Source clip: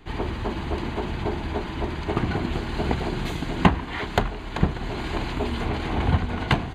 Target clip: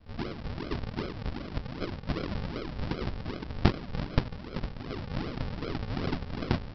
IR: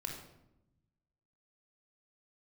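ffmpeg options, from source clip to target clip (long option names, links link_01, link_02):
-af "highpass=400,aresample=11025,acrusher=samples=23:mix=1:aa=0.000001:lfo=1:lforange=23:lforate=2.6,aresample=44100,volume=-1.5dB"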